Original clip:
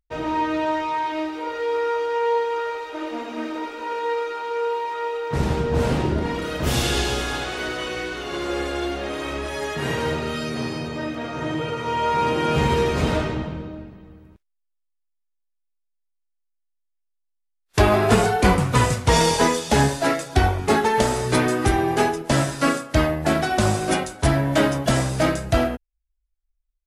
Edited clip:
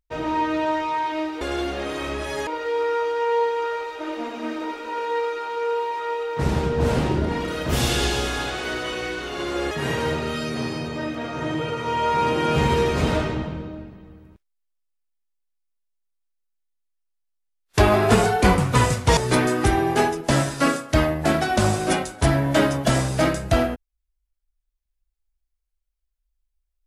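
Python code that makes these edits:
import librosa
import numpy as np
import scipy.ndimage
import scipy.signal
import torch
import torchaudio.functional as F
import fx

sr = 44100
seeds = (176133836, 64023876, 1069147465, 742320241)

y = fx.edit(x, sr, fx.move(start_s=8.65, length_s=1.06, to_s=1.41),
    fx.cut(start_s=19.17, length_s=2.01), tone=tone)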